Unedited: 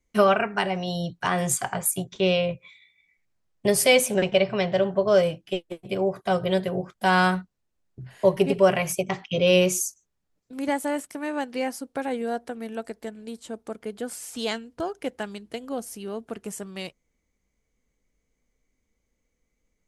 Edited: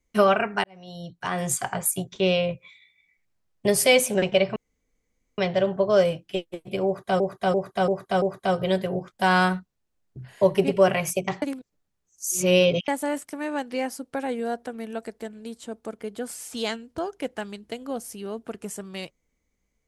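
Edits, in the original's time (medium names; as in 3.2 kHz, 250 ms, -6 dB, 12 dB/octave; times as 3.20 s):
0.64–1.66 s: fade in
4.56 s: insert room tone 0.82 s
6.04–6.38 s: loop, 5 plays
9.24–10.70 s: reverse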